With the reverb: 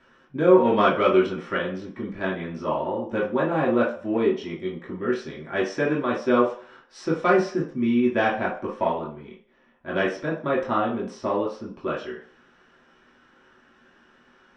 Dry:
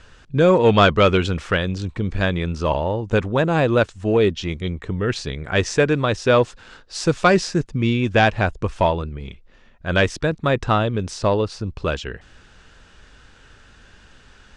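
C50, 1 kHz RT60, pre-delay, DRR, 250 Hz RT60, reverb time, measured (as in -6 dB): 7.0 dB, 0.45 s, 3 ms, -6.5 dB, 0.40 s, 0.45 s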